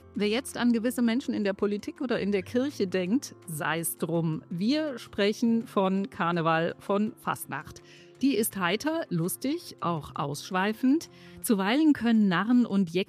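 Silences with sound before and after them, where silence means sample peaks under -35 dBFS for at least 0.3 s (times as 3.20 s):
7.77–8.21 s
11.05–11.44 s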